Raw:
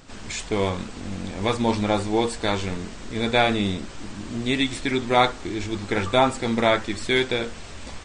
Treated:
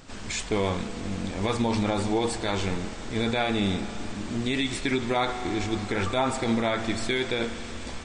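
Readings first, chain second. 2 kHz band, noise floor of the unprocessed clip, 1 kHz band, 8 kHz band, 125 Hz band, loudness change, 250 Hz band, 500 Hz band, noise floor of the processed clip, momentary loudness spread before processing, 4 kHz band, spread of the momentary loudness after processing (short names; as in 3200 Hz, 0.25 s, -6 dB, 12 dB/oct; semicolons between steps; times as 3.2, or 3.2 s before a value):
-4.5 dB, -39 dBFS, -5.5 dB, -0.5 dB, -1.5 dB, -4.0 dB, -2.0 dB, -4.5 dB, -38 dBFS, 13 LU, -4.0 dB, 7 LU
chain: spring tank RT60 3.6 s, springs 35 ms, chirp 35 ms, DRR 13.5 dB; limiter -15.5 dBFS, peak gain reduction 9.5 dB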